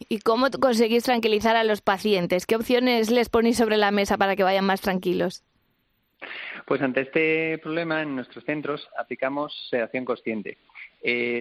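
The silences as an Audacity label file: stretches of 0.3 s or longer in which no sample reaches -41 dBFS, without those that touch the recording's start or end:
5.370000	6.220000	silence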